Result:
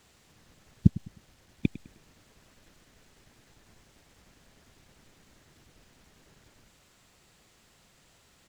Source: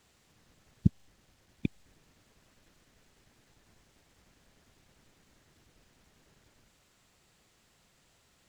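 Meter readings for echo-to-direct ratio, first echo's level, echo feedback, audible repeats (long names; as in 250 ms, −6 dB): −17.0 dB, −17.5 dB, 32%, 2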